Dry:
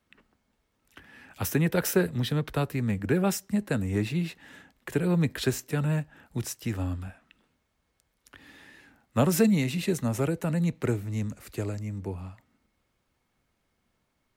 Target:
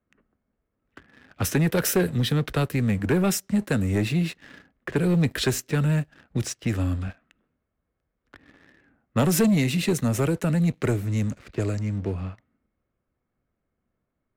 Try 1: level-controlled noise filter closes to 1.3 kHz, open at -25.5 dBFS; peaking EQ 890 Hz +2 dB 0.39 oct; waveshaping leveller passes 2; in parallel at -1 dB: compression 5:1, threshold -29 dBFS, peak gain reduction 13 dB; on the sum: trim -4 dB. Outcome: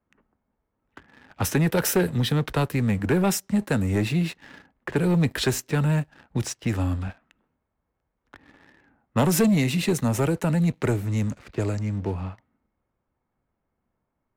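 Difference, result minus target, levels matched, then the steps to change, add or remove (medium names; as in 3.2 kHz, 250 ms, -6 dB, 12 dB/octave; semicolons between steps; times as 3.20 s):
1 kHz band +2.5 dB
change: peaking EQ 890 Hz -8.5 dB 0.39 oct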